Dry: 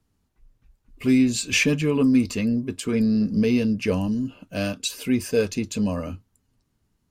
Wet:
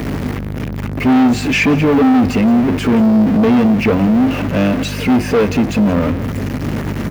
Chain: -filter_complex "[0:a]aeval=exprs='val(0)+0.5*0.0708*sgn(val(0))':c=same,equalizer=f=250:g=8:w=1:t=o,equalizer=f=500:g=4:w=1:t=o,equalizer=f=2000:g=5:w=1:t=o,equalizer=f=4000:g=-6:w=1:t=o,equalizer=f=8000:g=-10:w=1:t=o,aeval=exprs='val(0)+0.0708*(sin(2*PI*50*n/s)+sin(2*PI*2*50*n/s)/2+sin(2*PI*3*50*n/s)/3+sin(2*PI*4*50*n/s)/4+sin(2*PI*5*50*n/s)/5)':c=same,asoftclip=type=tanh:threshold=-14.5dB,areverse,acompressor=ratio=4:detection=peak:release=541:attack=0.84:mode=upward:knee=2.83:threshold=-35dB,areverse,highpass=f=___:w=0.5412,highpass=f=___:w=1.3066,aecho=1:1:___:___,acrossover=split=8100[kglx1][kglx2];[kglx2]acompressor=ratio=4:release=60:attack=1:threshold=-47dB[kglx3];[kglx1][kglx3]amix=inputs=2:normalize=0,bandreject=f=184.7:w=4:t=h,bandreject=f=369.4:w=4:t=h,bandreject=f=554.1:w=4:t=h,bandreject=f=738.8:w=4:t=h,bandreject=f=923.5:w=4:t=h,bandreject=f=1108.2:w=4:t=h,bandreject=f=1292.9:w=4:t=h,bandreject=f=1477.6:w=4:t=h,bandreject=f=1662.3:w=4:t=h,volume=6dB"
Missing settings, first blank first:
66, 66, 174, 0.112